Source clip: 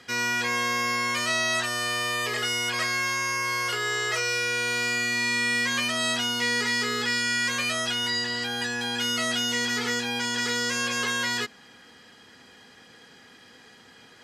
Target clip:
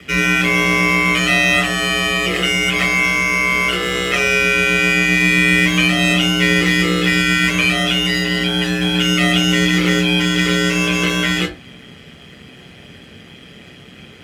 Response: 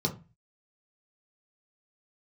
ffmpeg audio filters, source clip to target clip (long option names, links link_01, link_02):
-filter_complex "[0:a]aeval=exprs='val(0)*sin(2*PI*64*n/s)':channel_layout=same,acrusher=bits=2:mode=log:mix=0:aa=0.000001[link_01];[1:a]atrim=start_sample=2205,atrim=end_sample=3528,asetrate=25137,aresample=44100[link_02];[link_01][link_02]afir=irnorm=-1:irlink=0,volume=2dB"